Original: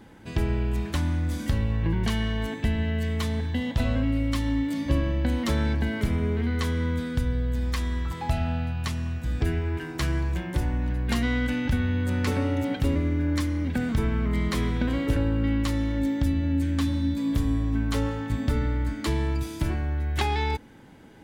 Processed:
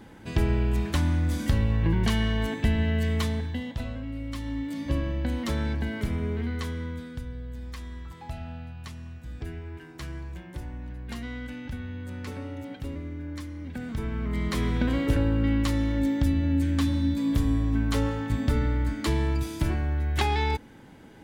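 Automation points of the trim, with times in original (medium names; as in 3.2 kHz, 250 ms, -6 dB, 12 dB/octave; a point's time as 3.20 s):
3.18 s +1.5 dB
4.00 s -11 dB
4.89 s -3.5 dB
6.42 s -3.5 dB
7.27 s -11 dB
13.55 s -11 dB
14.76 s +0.5 dB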